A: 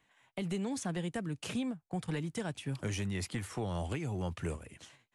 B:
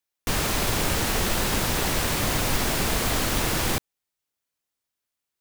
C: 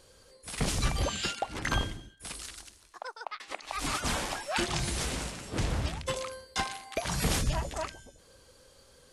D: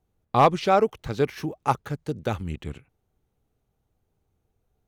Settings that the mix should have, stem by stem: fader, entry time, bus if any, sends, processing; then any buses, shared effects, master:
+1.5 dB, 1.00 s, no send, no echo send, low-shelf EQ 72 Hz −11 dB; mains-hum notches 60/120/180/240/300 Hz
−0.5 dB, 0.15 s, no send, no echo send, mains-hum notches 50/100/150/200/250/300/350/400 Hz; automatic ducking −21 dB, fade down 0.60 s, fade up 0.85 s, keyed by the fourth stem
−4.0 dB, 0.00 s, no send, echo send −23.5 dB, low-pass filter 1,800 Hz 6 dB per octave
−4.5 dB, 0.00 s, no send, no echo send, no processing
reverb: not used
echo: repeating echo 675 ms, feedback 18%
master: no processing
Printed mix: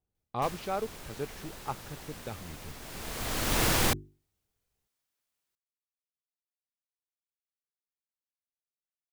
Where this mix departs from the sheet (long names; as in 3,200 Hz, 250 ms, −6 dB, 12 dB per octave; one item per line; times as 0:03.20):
stem A: muted
stem C: muted
stem D −4.5 dB → −13.5 dB